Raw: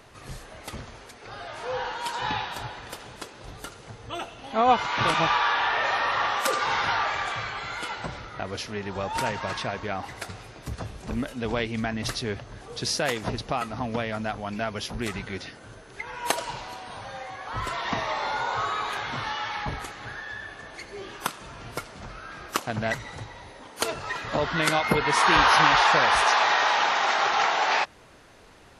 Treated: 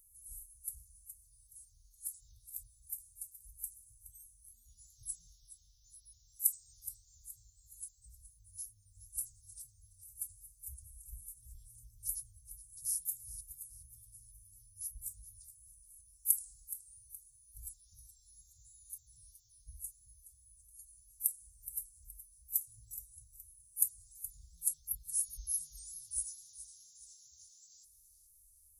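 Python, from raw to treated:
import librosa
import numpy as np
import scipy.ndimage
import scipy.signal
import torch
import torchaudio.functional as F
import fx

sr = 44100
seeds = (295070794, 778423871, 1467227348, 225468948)

p1 = scipy.signal.sosfilt(scipy.signal.cheby2(4, 80, [350.0, 2400.0], 'bandstop', fs=sr, output='sos'), x)
p2 = fx.vibrato(p1, sr, rate_hz=2.9, depth_cents=38.0)
p3 = F.preemphasis(torch.from_numpy(p2), 0.9).numpy()
p4 = p3 + fx.echo_feedback(p3, sr, ms=421, feedback_pct=41, wet_db=-14.0, dry=0)
y = p4 * librosa.db_to_amplitude(8.0)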